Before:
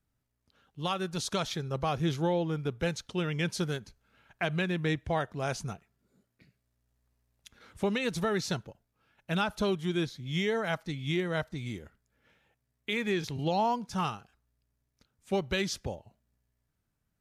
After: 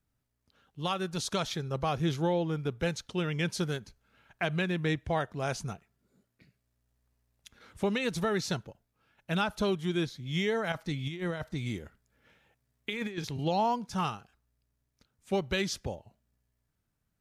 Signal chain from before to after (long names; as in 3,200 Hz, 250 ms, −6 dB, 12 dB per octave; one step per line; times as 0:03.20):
0:10.72–0:13.18: compressor whose output falls as the input rises −33 dBFS, ratio −0.5